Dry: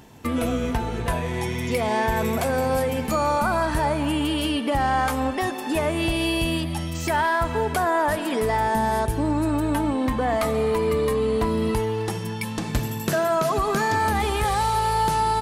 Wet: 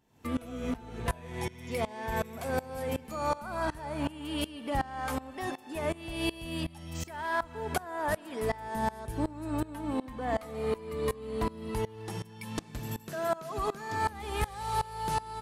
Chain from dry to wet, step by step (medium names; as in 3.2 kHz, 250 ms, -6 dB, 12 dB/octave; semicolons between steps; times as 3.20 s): on a send at -18 dB: reverberation RT60 0.95 s, pre-delay 139 ms; on the sum: sawtooth tremolo in dB swelling 2.7 Hz, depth 22 dB; trim -4 dB